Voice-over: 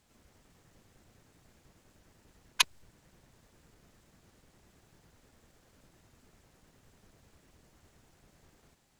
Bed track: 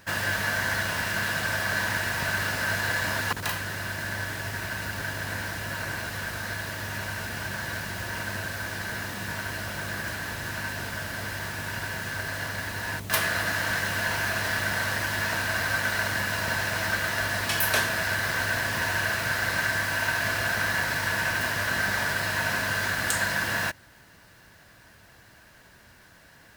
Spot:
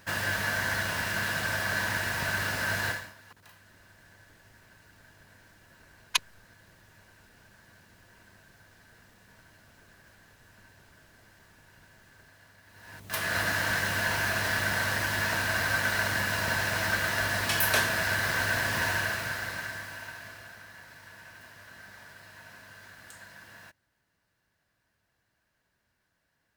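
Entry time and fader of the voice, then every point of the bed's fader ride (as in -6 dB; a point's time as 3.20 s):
3.55 s, -1.0 dB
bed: 2.89 s -2.5 dB
3.15 s -25.5 dB
12.63 s -25.5 dB
13.36 s -1 dB
18.88 s -1 dB
20.66 s -23 dB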